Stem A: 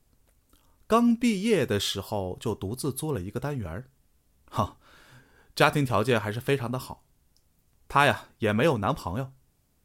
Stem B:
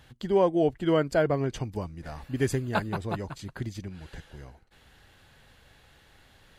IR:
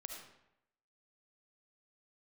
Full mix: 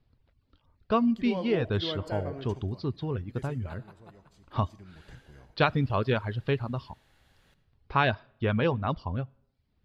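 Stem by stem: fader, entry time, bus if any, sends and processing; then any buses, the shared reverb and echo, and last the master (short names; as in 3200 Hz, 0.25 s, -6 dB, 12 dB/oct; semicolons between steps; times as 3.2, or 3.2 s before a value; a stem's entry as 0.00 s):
-4.0 dB, 0.00 s, send -23 dB, reverb removal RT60 0.59 s; steep low-pass 4700 Hz 48 dB/oct; bell 96 Hz +7.5 dB 1.5 oct
2.34 s -6 dB -> 2.99 s -14 dB -> 4.62 s -14 dB -> 4.89 s -1.5 dB, 0.95 s, send -10 dB, auto duck -10 dB, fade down 1.45 s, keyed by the first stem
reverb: on, RT60 0.80 s, pre-delay 30 ms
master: dry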